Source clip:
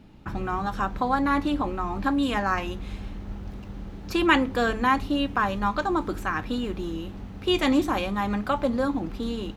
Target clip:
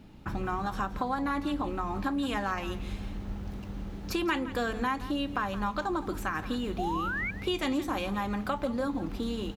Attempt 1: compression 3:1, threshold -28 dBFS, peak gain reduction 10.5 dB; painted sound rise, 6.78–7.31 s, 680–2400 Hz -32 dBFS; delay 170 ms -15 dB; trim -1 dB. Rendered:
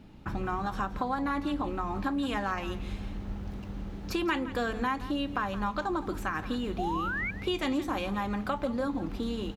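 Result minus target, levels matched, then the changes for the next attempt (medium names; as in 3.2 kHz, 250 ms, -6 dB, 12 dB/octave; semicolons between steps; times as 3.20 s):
8 kHz band -2.5 dB
add after compression: treble shelf 6.9 kHz +5 dB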